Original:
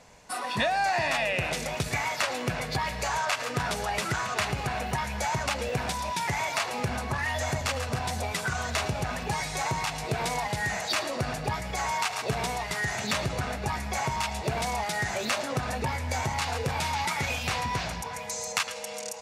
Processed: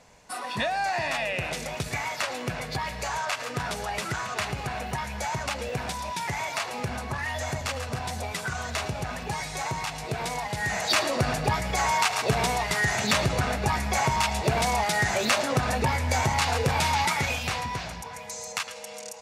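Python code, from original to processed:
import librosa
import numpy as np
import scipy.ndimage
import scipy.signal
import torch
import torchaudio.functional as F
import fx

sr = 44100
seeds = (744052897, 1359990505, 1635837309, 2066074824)

y = fx.gain(x, sr, db=fx.line((10.49, -1.5), (10.93, 5.0), (16.99, 5.0), (17.83, -3.0)))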